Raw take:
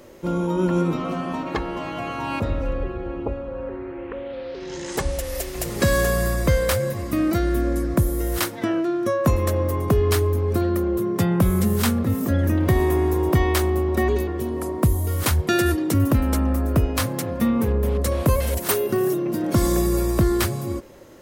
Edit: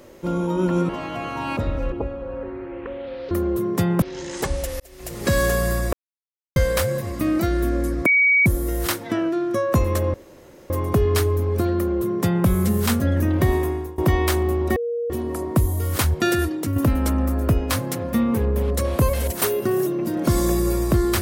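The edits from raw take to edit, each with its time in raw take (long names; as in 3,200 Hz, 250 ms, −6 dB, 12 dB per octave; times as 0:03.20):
0:00.89–0:01.72: remove
0:02.75–0:03.18: remove
0:05.35–0:05.91: fade in
0:06.48: splice in silence 0.63 s
0:07.98: insert tone 2,260 Hz −13 dBFS 0.40 s
0:09.66: splice in room tone 0.56 s
0:10.72–0:11.43: duplicate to 0:04.57
0:11.96–0:12.27: remove
0:12.77–0:13.25: fade out linear, to −22 dB
0:14.03–0:14.37: beep over 472 Hz −22 dBFS
0:15.53–0:16.03: fade out, to −6.5 dB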